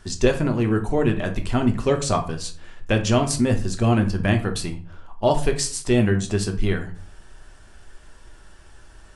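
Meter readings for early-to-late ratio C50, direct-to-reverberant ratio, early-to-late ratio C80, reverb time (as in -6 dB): 12.0 dB, 4.0 dB, 18.0 dB, 0.45 s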